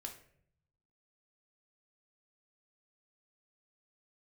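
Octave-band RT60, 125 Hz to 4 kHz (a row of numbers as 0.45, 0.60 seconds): 1.3, 0.90, 0.75, 0.50, 0.55, 0.40 seconds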